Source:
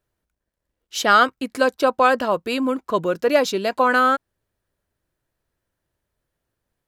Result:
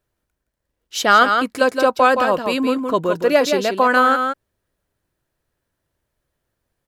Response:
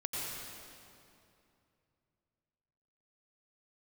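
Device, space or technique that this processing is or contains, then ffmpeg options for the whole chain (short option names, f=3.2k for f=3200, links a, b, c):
ducked delay: -filter_complex "[0:a]asplit=3[a][b][c];[b]adelay=168,volume=-5.5dB[d];[c]apad=whole_len=310787[e];[d][e]sidechaincompress=threshold=-18dB:ratio=8:attack=16:release=125[f];[a][f]amix=inputs=2:normalize=0,volume=2dB"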